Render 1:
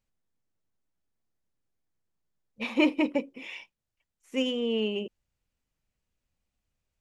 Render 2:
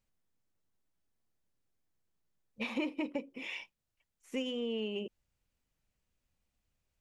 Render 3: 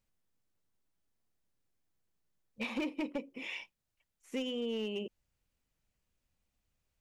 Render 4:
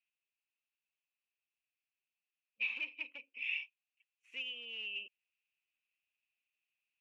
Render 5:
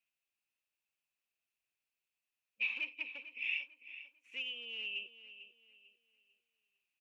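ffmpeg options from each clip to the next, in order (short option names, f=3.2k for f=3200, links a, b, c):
-af "acompressor=threshold=-34dB:ratio=4"
-af "volume=29.5dB,asoftclip=hard,volume=-29.5dB"
-af "bandpass=f=2.6k:t=q:w=10:csg=0,volume=10dB"
-filter_complex "[0:a]asplit=2[a][b];[b]adelay=447,lowpass=f=4.4k:p=1,volume=-12.5dB,asplit=2[c][d];[d]adelay=447,lowpass=f=4.4k:p=1,volume=0.36,asplit=2[e][f];[f]adelay=447,lowpass=f=4.4k:p=1,volume=0.36,asplit=2[g][h];[h]adelay=447,lowpass=f=4.4k:p=1,volume=0.36[i];[a][c][e][g][i]amix=inputs=5:normalize=0,volume=1dB"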